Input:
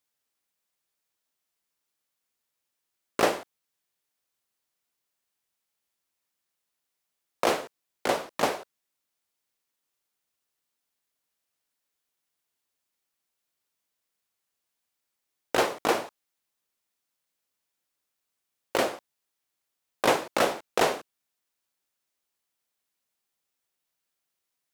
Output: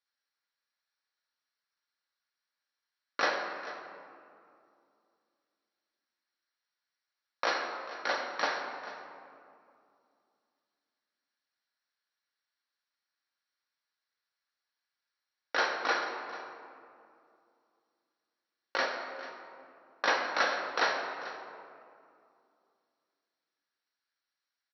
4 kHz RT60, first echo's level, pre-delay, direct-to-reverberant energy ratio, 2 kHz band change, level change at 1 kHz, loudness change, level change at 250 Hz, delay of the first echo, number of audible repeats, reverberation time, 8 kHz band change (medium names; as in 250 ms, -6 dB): 1.4 s, -15.5 dB, 3 ms, 1.0 dB, +1.5 dB, -3.0 dB, -5.0 dB, -12.5 dB, 441 ms, 1, 2.5 s, -11.5 dB